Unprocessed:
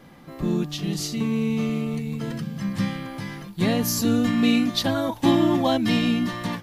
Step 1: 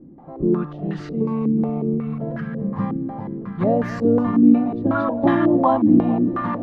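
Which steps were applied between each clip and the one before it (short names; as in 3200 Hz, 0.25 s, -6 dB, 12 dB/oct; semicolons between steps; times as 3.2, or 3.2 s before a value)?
split-band echo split 480 Hz, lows 0.677 s, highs 0.226 s, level -11 dB; stepped low-pass 5.5 Hz 310–1600 Hz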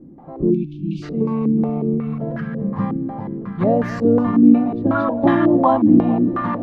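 spectral delete 0.51–1.03, 370–2200 Hz; gain +2 dB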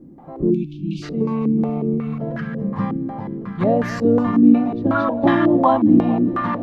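high shelf 2200 Hz +8 dB; gain -1 dB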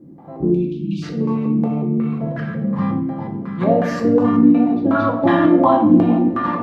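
HPF 59 Hz; reverb RT60 0.70 s, pre-delay 6 ms, DRR 1.5 dB; gain -1 dB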